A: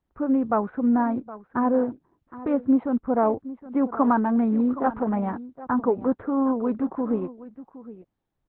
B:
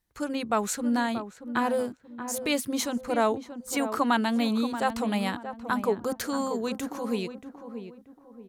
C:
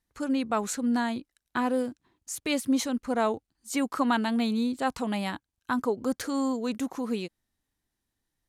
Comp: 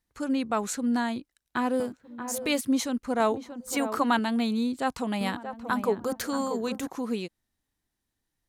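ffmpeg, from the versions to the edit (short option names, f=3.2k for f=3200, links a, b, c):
-filter_complex "[1:a]asplit=3[a][b][c];[2:a]asplit=4[d][e][f][g];[d]atrim=end=1.802[h];[a]atrim=start=1.798:end=2.612[i];[e]atrim=start=2.608:end=3.202[j];[b]atrim=start=3.198:end=4.192[k];[f]atrim=start=4.188:end=5.212[l];[c]atrim=start=5.208:end=6.872[m];[g]atrim=start=6.868[n];[h][i]acrossfade=d=0.004:c1=hsin:c2=hsin[o];[o][j]acrossfade=d=0.004:c1=hsin:c2=hsin[p];[p][k]acrossfade=d=0.004:c1=hsin:c2=hsin[q];[q][l]acrossfade=d=0.004:c1=hsin:c2=hsin[r];[r][m]acrossfade=d=0.004:c1=hsin:c2=hsin[s];[s][n]acrossfade=d=0.004:c1=hsin:c2=hsin"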